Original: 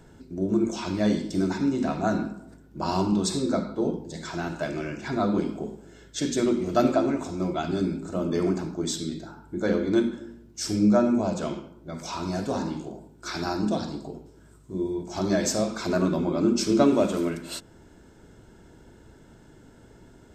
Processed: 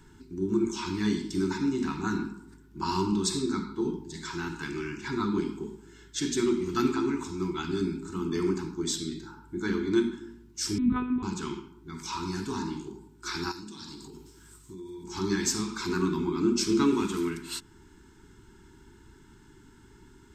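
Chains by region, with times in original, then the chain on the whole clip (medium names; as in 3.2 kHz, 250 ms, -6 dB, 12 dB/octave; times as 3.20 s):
10.78–11.23 s: monotone LPC vocoder at 8 kHz 250 Hz + high-pass 56 Hz
13.51–15.04 s: treble shelf 2.1 kHz +11.5 dB + compression, threshold -37 dBFS
whole clip: Chebyshev band-stop 400–890 Hz, order 3; peaking EQ 150 Hz -4 dB 1.9 oct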